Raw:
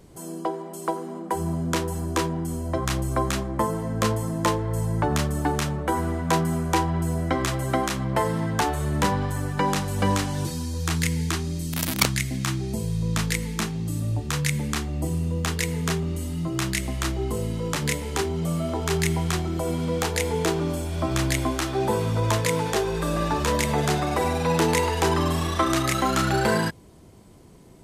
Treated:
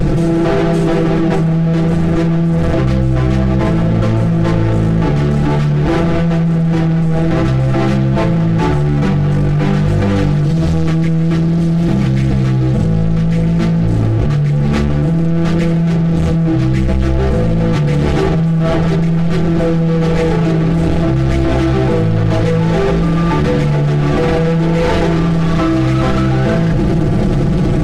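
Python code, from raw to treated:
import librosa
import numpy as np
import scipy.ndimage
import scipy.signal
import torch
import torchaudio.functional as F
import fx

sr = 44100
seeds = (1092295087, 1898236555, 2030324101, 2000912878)

p1 = np.sign(x) * np.sqrt(np.mean(np.square(x)))
p2 = fx.low_shelf(p1, sr, hz=310.0, db=12.0)
p3 = fx.notch(p2, sr, hz=1000.0, q=6.7)
p4 = p3 + 0.81 * np.pad(p3, (int(6.0 * sr / 1000.0), 0))[:len(p3)]
p5 = fx.vibrato(p4, sr, rate_hz=0.53, depth_cents=23.0)
p6 = fx.spacing_loss(p5, sr, db_at_10k=24)
p7 = p6 + fx.echo_single(p6, sr, ms=170, db=-11.0, dry=0)
p8 = fx.env_flatten(p7, sr, amount_pct=100)
y = p8 * 10.0 ** (-1.0 / 20.0)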